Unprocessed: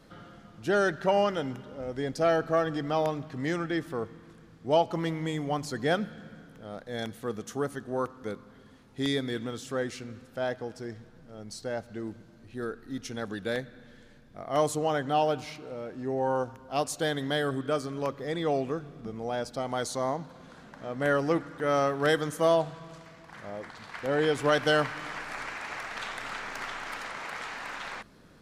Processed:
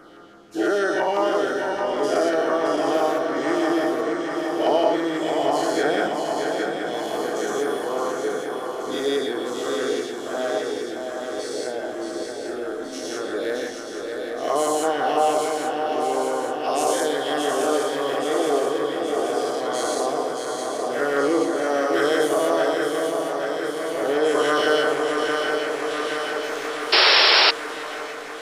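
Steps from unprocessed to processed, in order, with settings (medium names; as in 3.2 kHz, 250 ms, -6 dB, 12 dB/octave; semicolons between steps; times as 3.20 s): every event in the spectrogram widened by 240 ms; LFO notch saw down 6 Hz 740–4200 Hz; resonant low shelf 230 Hz -12.5 dB, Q 1.5; shuffle delay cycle 826 ms, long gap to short 3:1, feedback 65%, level -5.5 dB; reverberation RT60 0.55 s, pre-delay 3 ms, DRR 6.5 dB; painted sound noise, 26.92–27.51 s, 350–5600 Hz -13 dBFS; trim -2 dB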